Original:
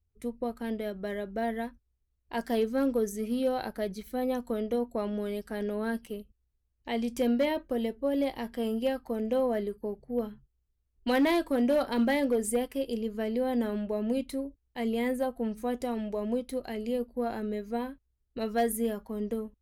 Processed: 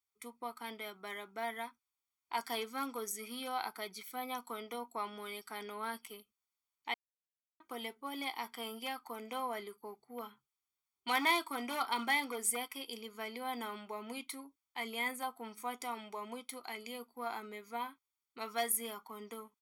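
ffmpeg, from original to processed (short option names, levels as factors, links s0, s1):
-filter_complex "[0:a]asplit=3[s0][s1][s2];[s0]atrim=end=6.94,asetpts=PTS-STARTPTS,afade=t=out:st=6.936:d=0.004:c=hsin[s3];[s1]atrim=start=6.94:end=7.6,asetpts=PTS-STARTPTS,volume=0[s4];[s2]atrim=start=7.6,asetpts=PTS-STARTPTS,afade=t=in:d=0.004:c=hsin[s5];[s3][s4][s5]concat=n=3:v=0:a=1,highpass=770,aecho=1:1:0.9:0.86"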